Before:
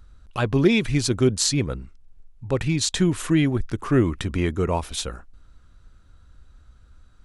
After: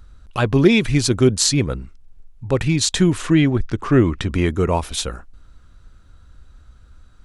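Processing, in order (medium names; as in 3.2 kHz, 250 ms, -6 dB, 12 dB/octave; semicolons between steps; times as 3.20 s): 3.18–4.32 s: low-pass 6.6 kHz 12 dB/octave; trim +4.5 dB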